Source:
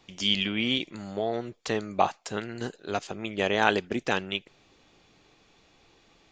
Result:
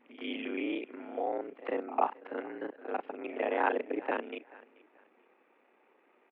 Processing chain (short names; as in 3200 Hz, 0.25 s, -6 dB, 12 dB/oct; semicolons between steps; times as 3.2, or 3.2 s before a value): local time reversal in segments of 30 ms; on a send: feedback echo 0.434 s, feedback 29%, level -23 dB; on the sum: mistuned SSB +58 Hz 200–2300 Hz; dynamic EQ 1700 Hz, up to -5 dB, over -43 dBFS, Q 1.4; pre-echo 97 ms -17 dB; gain -3 dB